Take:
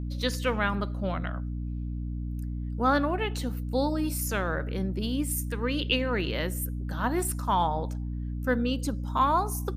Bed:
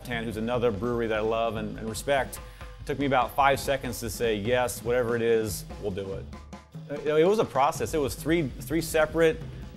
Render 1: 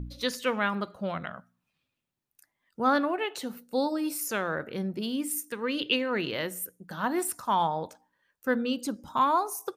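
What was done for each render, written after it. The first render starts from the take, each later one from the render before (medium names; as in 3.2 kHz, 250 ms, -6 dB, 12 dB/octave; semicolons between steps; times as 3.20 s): de-hum 60 Hz, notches 5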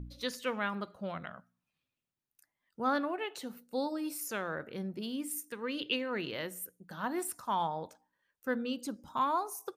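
trim -6.5 dB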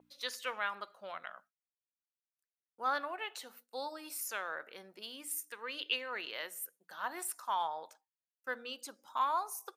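expander -52 dBFS; high-pass 760 Hz 12 dB/octave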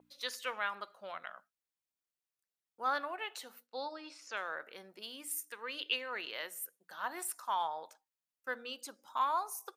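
3.67–4.37 s: low-pass 5.3 kHz 24 dB/octave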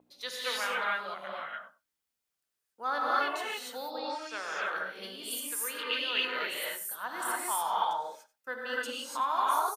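delay 93 ms -17.5 dB; gated-style reverb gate 320 ms rising, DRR -6 dB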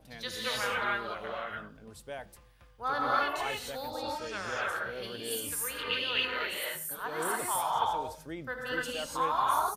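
add bed -16.5 dB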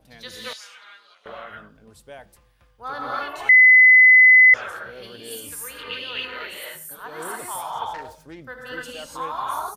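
0.53–1.26 s: band-pass filter 5.7 kHz, Q 1.6; 3.49–4.54 s: bleep 2.02 kHz -7.5 dBFS; 7.94–8.40 s: self-modulated delay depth 0.22 ms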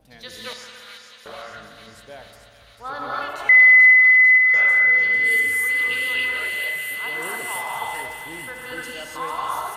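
on a send: feedback echo behind a high-pass 444 ms, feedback 73%, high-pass 2 kHz, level -7 dB; on the sum: spring tank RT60 2.7 s, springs 54 ms, chirp 80 ms, DRR 6 dB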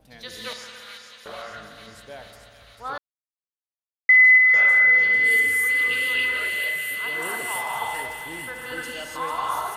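2.98–4.09 s: mute; 5.51–7.19 s: peaking EQ 830 Hz -12.5 dB 0.2 oct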